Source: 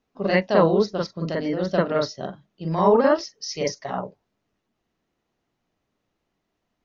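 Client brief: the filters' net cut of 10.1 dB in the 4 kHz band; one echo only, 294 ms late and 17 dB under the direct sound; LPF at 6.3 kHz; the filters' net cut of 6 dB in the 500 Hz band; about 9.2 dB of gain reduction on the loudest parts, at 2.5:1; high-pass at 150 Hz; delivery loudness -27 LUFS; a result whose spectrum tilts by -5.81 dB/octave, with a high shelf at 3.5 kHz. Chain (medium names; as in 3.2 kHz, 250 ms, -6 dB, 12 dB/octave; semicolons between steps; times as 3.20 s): high-pass 150 Hz; low-pass 6.3 kHz; peaking EQ 500 Hz -7 dB; treble shelf 3.5 kHz -7 dB; peaking EQ 4 kHz -7 dB; compression 2.5:1, threshold -31 dBFS; delay 294 ms -17 dB; trim +7 dB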